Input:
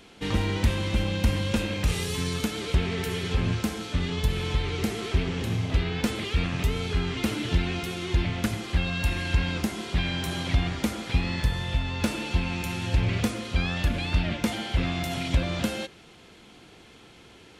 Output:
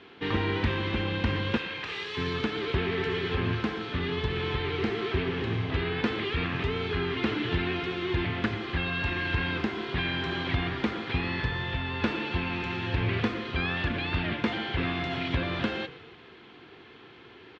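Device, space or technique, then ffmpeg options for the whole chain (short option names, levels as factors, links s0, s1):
frequency-shifting delay pedal into a guitar cabinet: -filter_complex "[0:a]asettb=1/sr,asplit=3[s0][s1][s2];[s0]atrim=end=1.574[s3];[s1]atrim=start=1.57:end=2.17,asetpts=PTS-STARTPTS,afade=t=in:d=0.004:c=qsin,afade=t=out:st=0.596:d=0.004:c=qsin,highpass=f=1200:p=1[s4];[s2]atrim=start=2.166[s5];[s3][s4]acrossfade=d=0.004:c1=hsin:c2=qsin[s6];[s6][s5]acrossfade=d=0.004:c1=qsin:c2=hsin,asplit=6[s7][s8][s9][s10][s11][s12];[s8]adelay=119,afreqshift=-40,volume=0.126[s13];[s9]adelay=238,afreqshift=-80,volume=0.0716[s14];[s10]adelay=357,afreqshift=-120,volume=0.0407[s15];[s11]adelay=476,afreqshift=-160,volume=0.0234[s16];[s12]adelay=595,afreqshift=-200,volume=0.0133[s17];[s7][s13][s14][s15][s16][s17]amix=inputs=6:normalize=0,highpass=100,equalizer=f=190:t=q:w=4:g=-6,equalizer=f=390:t=q:w=4:g=6,equalizer=f=580:t=q:w=4:g=-5,equalizer=f=1100:t=q:w=4:g=4,equalizer=f=1700:t=q:w=4:g=5,lowpass=f=3800:w=0.5412,lowpass=f=3800:w=1.3066"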